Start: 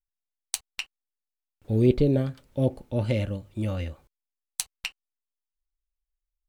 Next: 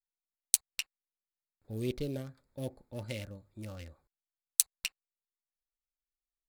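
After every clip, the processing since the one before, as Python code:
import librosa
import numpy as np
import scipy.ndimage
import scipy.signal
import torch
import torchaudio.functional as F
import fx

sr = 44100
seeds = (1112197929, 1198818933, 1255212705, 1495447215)

y = fx.wiener(x, sr, points=15)
y = F.preemphasis(torch.from_numpy(y), 0.9).numpy()
y = y * librosa.db_to_amplitude(4.5)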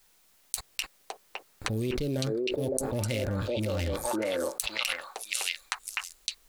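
y = fx.echo_stepped(x, sr, ms=561, hz=460.0, octaves=1.4, feedback_pct=70, wet_db=0)
y = fx.env_flatten(y, sr, amount_pct=100)
y = y * librosa.db_to_amplitude(-8.0)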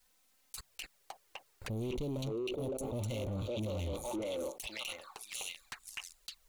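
y = np.clip(10.0 ** (28.0 / 20.0) * x, -1.0, 1.0) / 10.0 ** (28.0 / 20.0)
y = fx.env_flanger(y, sr, rest_ms=4.3, full_db=-32.0)
y = y * librosa.db_to_amplitude(-4.5)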